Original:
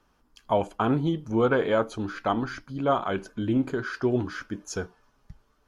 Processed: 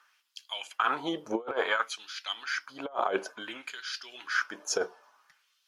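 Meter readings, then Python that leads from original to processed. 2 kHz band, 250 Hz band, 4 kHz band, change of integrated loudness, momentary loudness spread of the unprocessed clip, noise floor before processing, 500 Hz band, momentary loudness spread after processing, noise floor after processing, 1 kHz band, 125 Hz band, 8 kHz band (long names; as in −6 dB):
+3.0 dB, −13.5 dB, +6.0 dB, −5.5 dB, 11 LU, −67 dBFS, −8.5 dB, 10 LU, −72 dBFS, −3.0 dB, −25.5 dB, +5.5 dB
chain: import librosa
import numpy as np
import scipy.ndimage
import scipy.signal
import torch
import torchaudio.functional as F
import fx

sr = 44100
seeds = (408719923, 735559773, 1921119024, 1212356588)

y = fx.filter_lfo_highpass(x, sr, shape='sine', hz=0.57, low_hz=500.0, high_hz=3500.0, q=1.9)
y = fx.over_compress(y, sr, threshold_db=-28.0, ratio=-0.5)
y = fx.dynamic_eq(y, sr, hz=5400.0, q=3.7, threshold_db=-54.0, ratio=4.0, max_db=4)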